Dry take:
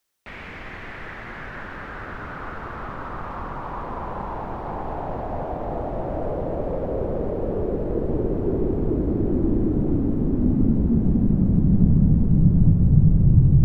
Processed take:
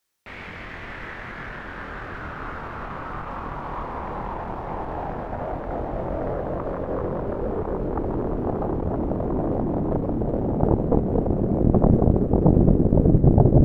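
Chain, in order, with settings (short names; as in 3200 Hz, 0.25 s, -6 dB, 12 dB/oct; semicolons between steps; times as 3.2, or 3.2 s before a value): chorus 0.15 Hz, depth 4.5 ms; added harmonics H 6 -13 dB, 7 -9 dB, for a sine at -6.5 dBFS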